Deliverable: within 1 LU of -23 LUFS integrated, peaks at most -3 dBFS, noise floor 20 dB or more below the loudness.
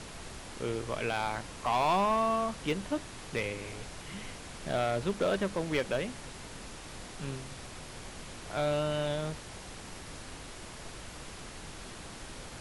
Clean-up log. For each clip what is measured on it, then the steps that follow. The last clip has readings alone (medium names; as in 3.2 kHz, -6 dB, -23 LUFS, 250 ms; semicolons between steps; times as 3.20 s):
clipped samples 0.7%; clipping level -22.5 dBFS; noise floor -46 dBFS; noise floor target -55 dBFS; loudness -35.0 LUFS; peak level -22.5 dBFS; loudness target -23.0 LUFS
-> clip repair -22.5 dBFS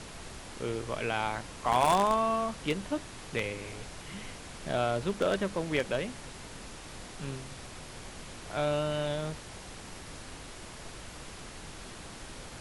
clipped samples 0.0%; noise floor -46 dBFS; noise floor target -52 dBFS
-> noise print and reduce 6 dB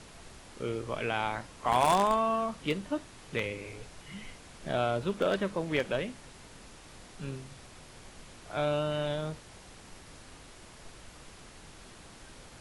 noise floor -52 dBFS; loudness -31.5 LUFS; peak level -13.5 dBFS; loudness target -23.0 LUFS
-> trim +8.5 dB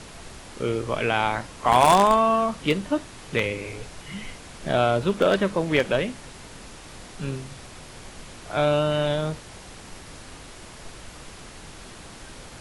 loudness -23.0 LUFS; peak level -5.0 dBFS; noise floor -43 dBFS